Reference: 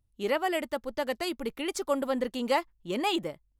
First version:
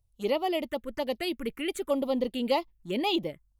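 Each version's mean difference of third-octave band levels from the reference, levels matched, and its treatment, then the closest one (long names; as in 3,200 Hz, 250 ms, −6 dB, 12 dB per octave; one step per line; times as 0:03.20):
3.5 dB: phaser swept by the level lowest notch 270 Hz, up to 1,600 Hz, full sweep at −26.5 dBFS
level +2.5 dB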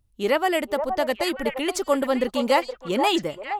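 2.0 dB: echo through a band-pass that steps 470 ms, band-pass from 760 Hz, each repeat 1.4 octaves, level −4 dB
level +6.5 dB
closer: second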